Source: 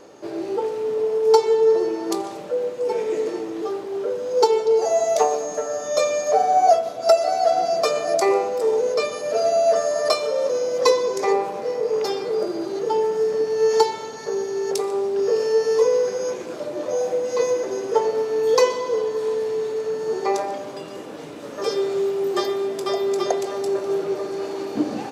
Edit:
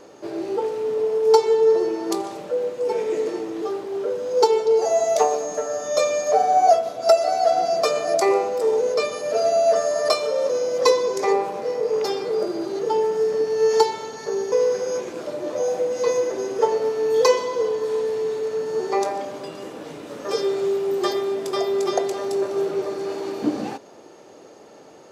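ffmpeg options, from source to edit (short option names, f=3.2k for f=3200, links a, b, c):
-filter_complex "[0:a]asplit=2[a][b];[a]atrim=end=14.522[c];[b]atrim=start=15.848[d];[c][d]acrossfade=d=0.004:c1=hsin:c2=hsin"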